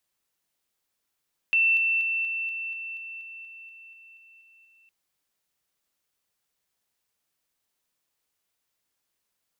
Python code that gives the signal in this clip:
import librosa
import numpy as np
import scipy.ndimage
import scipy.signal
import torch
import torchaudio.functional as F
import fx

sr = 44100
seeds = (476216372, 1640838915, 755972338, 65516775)

y = fx.level_ladder(sr, hz=2680.0, from_db=-18.0, step_db=-3.0, steps=14, dwell_s=0.24, gap_s=0.0)